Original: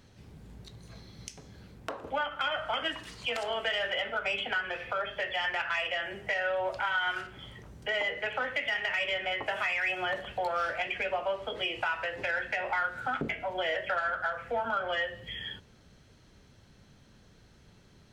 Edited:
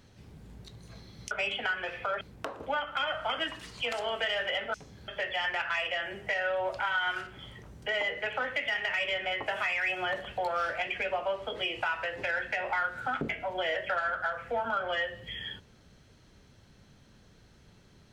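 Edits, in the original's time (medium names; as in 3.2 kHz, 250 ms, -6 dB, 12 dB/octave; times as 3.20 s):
1.31–1.65 s: swap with 4.18–5.08 s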